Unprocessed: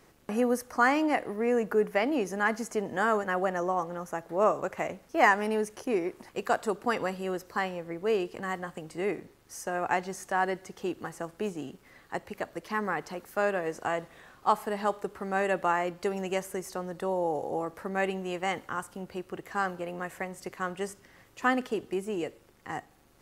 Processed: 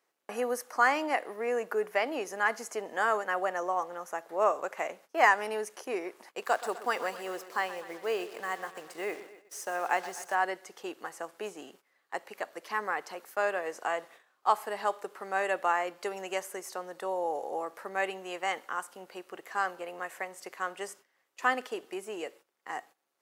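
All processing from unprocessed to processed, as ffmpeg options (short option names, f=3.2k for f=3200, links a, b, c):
-filter_complex "[0:a]asettb=1/sr,asplit=3[a][b][c];[a]atrim=end=6.424[d];[b]atrim=start=6.42:end=10.35,asetpts=PTS-STARTPTS,afade=t=in:d=0.004:c=qsin,afade=t=out:st=3.926:d=0.004:c=qsin,acrusher=bits=7:mix=0:aa=0.5,aecho=1:1:126|252|378|504|630|756:0.188|0.111|0.0656|0.0387|0.0228|0.0135,atrim=end_sample=173313[e];[c]atrim=start=10.346[f];[d][e]acrossfade=d=0.004:c1=hsin:c2=qsin[g];[g][f]acrossfade=d=0.004:c1=qsin:c2=hsin,agate=range=-16dB:threshold=-49dB:ratio=16:detection=peak,highpass=510"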